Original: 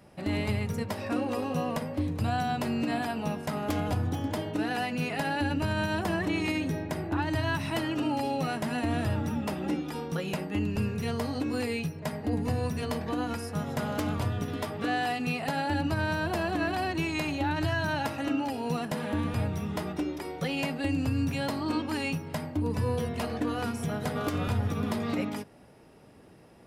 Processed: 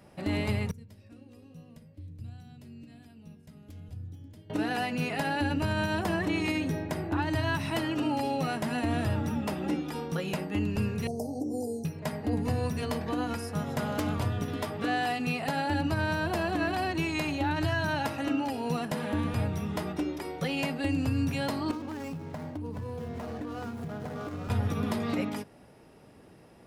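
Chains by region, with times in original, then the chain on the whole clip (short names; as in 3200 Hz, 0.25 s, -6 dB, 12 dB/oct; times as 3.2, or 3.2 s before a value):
0.71–4.5 passive tone stack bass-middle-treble 10-0-1 + notches 50/100/150/200/250/300/350 Hz
11.07–11.85 Chebyshev band-stop 760–5500 Hz, order 4 + low shelf 120 Hz -11.5 dB
21.71–24.5 median filter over 15 samples + compressor, threshold -33 dBFS
whole clip: dry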